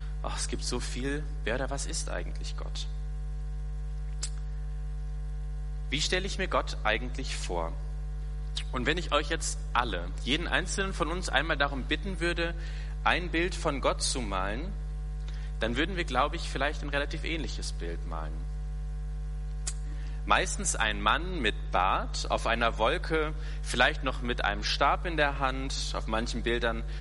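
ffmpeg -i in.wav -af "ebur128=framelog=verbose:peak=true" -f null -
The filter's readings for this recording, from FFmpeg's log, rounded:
Integrated loudness:
  I:         -31.0 LUFS
  Threshold: -41.0 LUFS
Loudness range:
  LRA:         7.2 LU
  Threshold: -51.0 LUFS
  LRA low:   -35.6 LUFS
  LRA high:  -28.5 LUFS
True peak:
  Peak:       -7.4 dBFS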